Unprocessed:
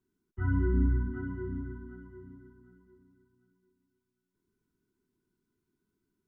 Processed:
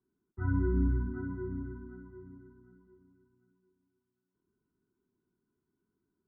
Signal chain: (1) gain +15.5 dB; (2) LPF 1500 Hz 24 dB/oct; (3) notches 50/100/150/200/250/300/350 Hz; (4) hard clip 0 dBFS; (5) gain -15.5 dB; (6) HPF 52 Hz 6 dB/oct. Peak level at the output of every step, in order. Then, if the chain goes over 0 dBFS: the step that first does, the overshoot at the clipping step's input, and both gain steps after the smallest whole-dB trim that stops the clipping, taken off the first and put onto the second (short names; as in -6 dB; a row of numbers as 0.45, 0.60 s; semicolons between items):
-1.5, -1.5, -1.5, -1.5, -17.0, -18.5 dBFS; no overload